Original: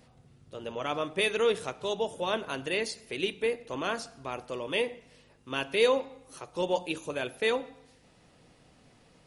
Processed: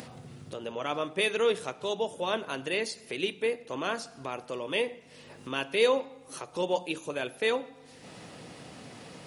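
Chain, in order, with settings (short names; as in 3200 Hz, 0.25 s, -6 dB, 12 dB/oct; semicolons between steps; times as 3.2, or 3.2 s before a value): HPF 120 Hz 12 dB/oct; upward compressor, threshold -33 dBFS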